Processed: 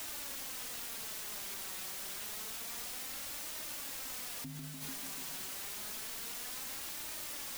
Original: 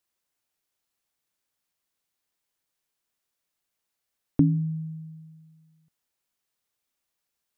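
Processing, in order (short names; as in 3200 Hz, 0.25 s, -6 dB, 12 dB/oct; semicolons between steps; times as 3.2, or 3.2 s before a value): Doppler pass-by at 1.67, 21 m/s, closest 3.2 m; dynamic EQ 140 Hz, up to +6 dB, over -59 dBFS, Q 0.78; on a send: narrowing echo 0.146 s, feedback 72%, band-pass 330 Hz, level -4 dB; on the sum: requantised 8-bit, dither triangular; limiter -44.5 dBFS, peak gain reduction 15.5 dB; flange 0.28 Hz, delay 3.2 ms, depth 2.2 ms, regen +46%; gain +12 dB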